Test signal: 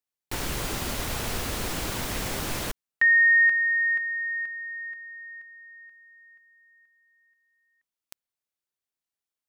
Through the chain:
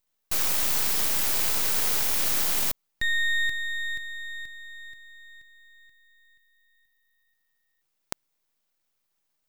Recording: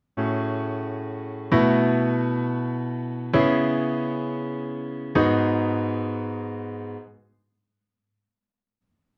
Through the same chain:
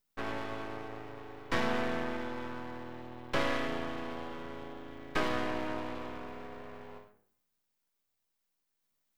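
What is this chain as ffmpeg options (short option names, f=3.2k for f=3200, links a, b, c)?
-af "aemphasis=mode=production:type=riaa,aeval=exprs='max(val(0),0)':c=same,volume=-5dB"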